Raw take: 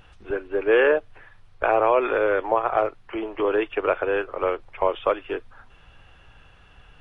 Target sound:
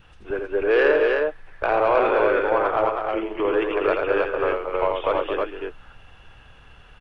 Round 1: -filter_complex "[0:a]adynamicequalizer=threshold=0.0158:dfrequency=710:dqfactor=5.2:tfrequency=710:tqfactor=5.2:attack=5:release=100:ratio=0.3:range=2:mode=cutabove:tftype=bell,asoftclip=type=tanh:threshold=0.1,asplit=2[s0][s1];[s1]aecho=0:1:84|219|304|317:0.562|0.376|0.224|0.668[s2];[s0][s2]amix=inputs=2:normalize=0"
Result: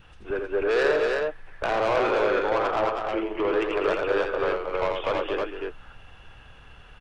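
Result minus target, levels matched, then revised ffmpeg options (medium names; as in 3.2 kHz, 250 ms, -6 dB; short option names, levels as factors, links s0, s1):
saturation: distortion +12 dB
-filter_complex "[0:a]adynamicequalizer=threshold=0.0158:dfrequency=710:dqfactor=5.2:tfrequency=710:tqfactor=5.2:attack=5:release=100:ratio=0.3:range=2:mode=cutabove:tftype=bell,asoftclip=type=tanh:threshold=0.316,asplit=2[s0][s1];[s1]aecho=0:1:84|219|304|317:0.562|0.376|0.224|0.668[s2];[s0][s2]amix=inputs=2:normalize=0"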